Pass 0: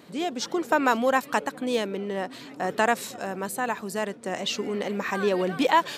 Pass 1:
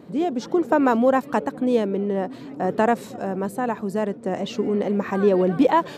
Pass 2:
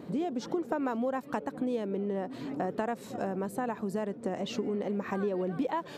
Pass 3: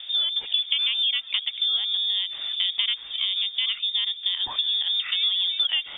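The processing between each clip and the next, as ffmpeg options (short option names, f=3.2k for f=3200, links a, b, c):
-af "tiltshelf=f=1.1k:g=9"
-af "acompressor=threshold=-30dB:ratio=5"
-af "lowpass=f=3.2k:t=q:w=0.5098,lowpass=f=3.2k:t=q:w=0.6013,lowpass=f=3.2k:t=q:w=0.9,lowpass=f=3.2k:t=q:w=2.563,afreqshift=-3800,volume=7dB"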